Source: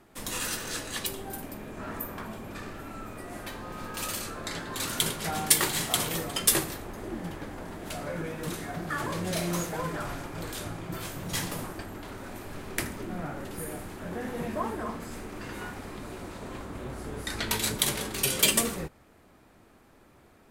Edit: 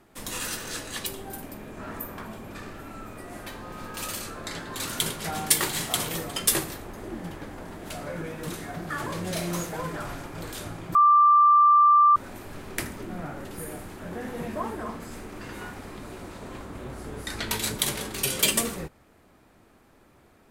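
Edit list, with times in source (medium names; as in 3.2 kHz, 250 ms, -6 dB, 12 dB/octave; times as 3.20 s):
10.95–12.16 s: bleep 1.18 kHz -13.5 dBFS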